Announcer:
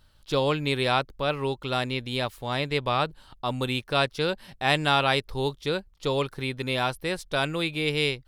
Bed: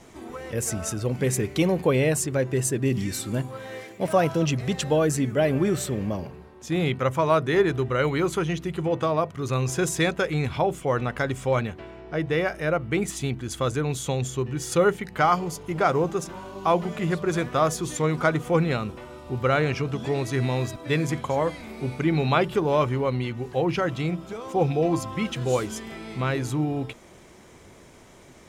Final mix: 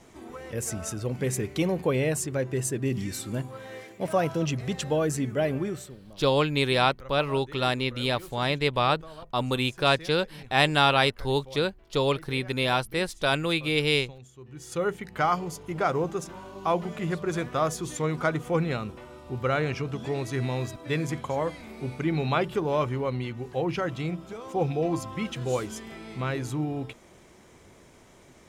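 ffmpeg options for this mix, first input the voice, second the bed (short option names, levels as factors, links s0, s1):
-filter_complex "[0:a]adelay=5900,volume=1.19[s0];[1:a]volume=4.73,afade=t=out:st=5.45:d=0.53:silence=0.133352,afade=t=in:st=14.39:d=0.74:silence=0.133352[s1];[s0][s1]amix=inputs=2:normalize=0"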